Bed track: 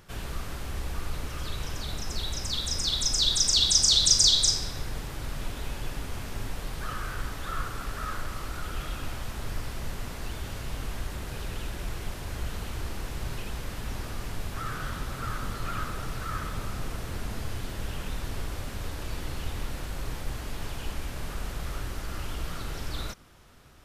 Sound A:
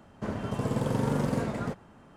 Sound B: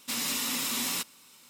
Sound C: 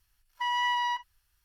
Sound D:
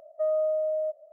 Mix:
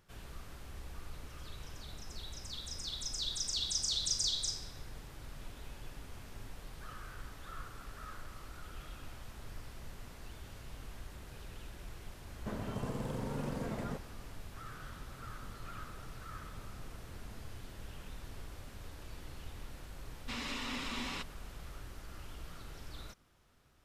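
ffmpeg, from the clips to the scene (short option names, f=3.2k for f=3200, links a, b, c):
-filter_complex "[0:a]volume=-13.5dB[a];[1:a]alimiter=limit=-23.5dB:level=0:latency=1:release=66[b];[2:a]highpass=130,lowpass=3.1k[c];[b]atrim=end=2.16,asetpts=PTS-STARTPTS,volume=-6.5dB,afade=t=in:d=0.004:c=hsin,afade=t=out:st=2.156:d=0.004:c=hsin,adelay=12240[d];[c]atrim=end=1.49,asetpts=PTS-STARTPTS,volume=-4dB,afade=t=in:d=0.004:c=hsin,afade=t=out:st=1.486:d=0.004:c=hsin,adelay=890820S[e];[a][d][e]amix=inputs=3:normalize=0"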